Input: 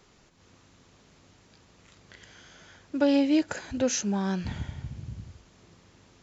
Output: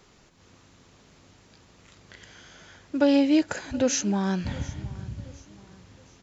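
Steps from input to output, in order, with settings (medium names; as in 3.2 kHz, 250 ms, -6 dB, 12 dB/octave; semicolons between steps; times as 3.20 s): feedback delay 721 ms, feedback 43%, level -21 dB; trim +2.5 dB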